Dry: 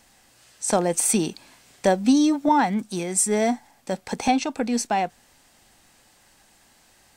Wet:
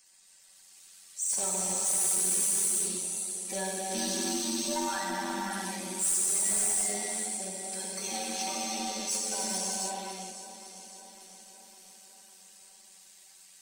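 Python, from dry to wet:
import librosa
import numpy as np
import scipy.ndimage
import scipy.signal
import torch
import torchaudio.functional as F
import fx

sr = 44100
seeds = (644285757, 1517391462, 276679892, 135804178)

p1 = fx.spec_quant(x, sr, step_db=30)
p2 = F.preemphasis(torch.from_numpy(p1), 0.9).numpy()
p3 = p2 + fx.echo_feedback(p2, sr, ms=292, feedback_pct=58, wet_db=-14, dry=0)
p4 = fx.rev_gated(p3, sr, seeds[0], gate_ms=410, shape='flat', drr_db=-6.0)
p5 = 10.0 ** (-24.0 / 20.0) * np.tanh(p4 / 10.0 ** (-24.0 / 20.0))
y = fx.stretch_grains(p5, sr, factor=1.9, grain_ms=22.0)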